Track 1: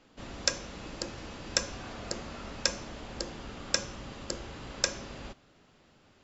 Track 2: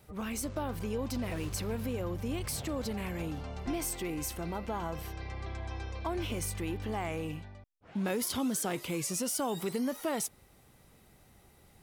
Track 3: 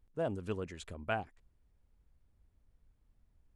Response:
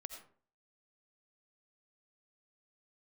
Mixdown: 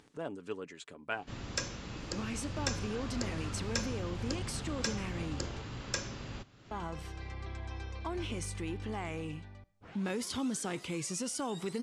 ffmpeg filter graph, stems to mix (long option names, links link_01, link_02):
-filter_complex "[0:a]equalizer=frequency=110:width=1.8:gain=8.5,asoftclip=type=tanh:threshold=-21.5dB,adelay=1100,volume=-1dB[link_01];[1:a]adelay=2000,volume=-3dB,asplit=3[link_02][link_03][link_04];[link_02]atrim=end=5.62,asetpts=PTS-STARTPTS,afade=type=out:start_time=5.616:duration=0.004:curve=hsin[link_05];[link_03]atrim=start=5.62:end=6.71,asetpts=PTS-STARTPTS,volume=0[link_06];[link_04]atrim=start=6.71,asetpts=PTS-STARTPTS,afade=type=in:duration=0.004:curve=hsin[link_07];[link_05][link_06][link_07]concat=n=3:v=0:a=1,asplit=2[link_08][link_09];[link_09]volume=-13dB[link_10];[2:a]highpass=250,aecho=1:1:7:0.36,volume=-0.5dB[link_11];[3:a]atrim=start_sample=2205[link_12];[link_10][link_12]afir=irnorm=-1:irlink=0[link_13];[link_01][link_08][link_11][link_13]amix=inputs=4:normalize=0,lowpass=frequency=8900:width=0.5412,lowpass=frequency=8900:width=1.3066,equalizer=frequency=630:width_type=o:width=0.74:gain=-4.5,acompressor=mode=upward:threshold=-45dB:ratio=2.5"